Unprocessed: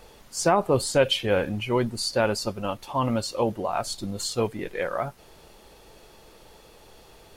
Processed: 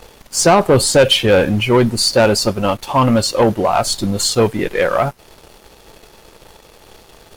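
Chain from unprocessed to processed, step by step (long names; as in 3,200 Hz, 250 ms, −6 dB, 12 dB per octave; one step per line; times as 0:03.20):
leveller curve on the samples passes 2
level +6 dB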